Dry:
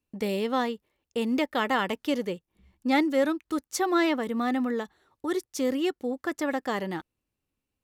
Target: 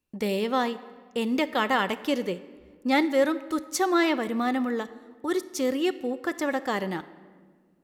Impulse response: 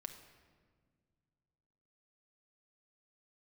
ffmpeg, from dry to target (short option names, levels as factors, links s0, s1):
-filter_complex "[0:a]asplit=2[s0][s1];[1:a]atrim=start_sample=2205,lowshelf=f=430:g=-5[s2];[s1][s2]afir=irnorm=-1:irlink=0,volume=1.41[s3];[s0][s3]amix=inputs=2:normalize=0,volume=0.708"